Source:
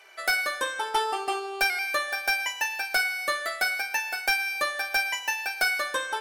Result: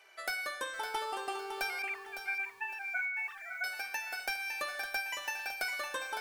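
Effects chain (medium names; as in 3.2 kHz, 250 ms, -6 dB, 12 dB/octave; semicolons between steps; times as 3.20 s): 1.82–3.64 s: formants replaced by sine waves; compression 3:1, threshold -26 dBFS, peak gain reduction 5.5 dB; bit-crushed delay 558 ms, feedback 35%, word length 8-bit, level -8 dB; trim -7.5 dB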